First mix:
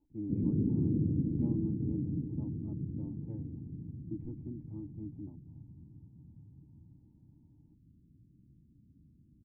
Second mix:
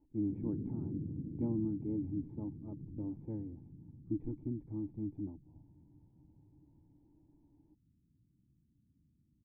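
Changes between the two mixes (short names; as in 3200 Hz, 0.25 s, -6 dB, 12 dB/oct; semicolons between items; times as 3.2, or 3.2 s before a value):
speech +4.5 dB; background -10.5 dB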